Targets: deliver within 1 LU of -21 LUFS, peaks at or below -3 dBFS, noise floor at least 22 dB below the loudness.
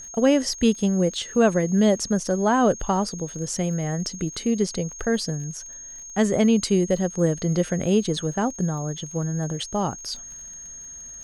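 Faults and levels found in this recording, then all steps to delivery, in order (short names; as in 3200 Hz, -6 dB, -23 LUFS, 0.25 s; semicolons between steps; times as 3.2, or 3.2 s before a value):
ticks 44/s; steady tone 6500 Hz; tone level -37 dBFS; loudness -23.5 LUFS; peak -7.5 dBFS; loudness target -21.0 LUFS
-> de-click; notch 6500 Hz, Q 30; gain +2.5 dB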